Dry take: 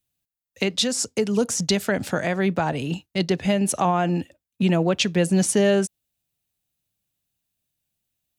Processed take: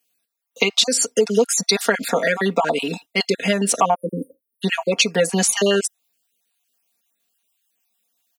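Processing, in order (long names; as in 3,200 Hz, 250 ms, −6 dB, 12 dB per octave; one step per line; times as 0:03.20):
time-frequency cells dropped at random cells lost 36%
high-pass filter 380 Hz 12 dB per octave
time-frequency box erased 0:03.94–0:04.63, 560–8,800 Hz
comb filter 4.3 ms, depth 84%
downward compressor 2 to 1, threshold −24 dBFS, peak gain reduction 6 dB
level +8.5 dB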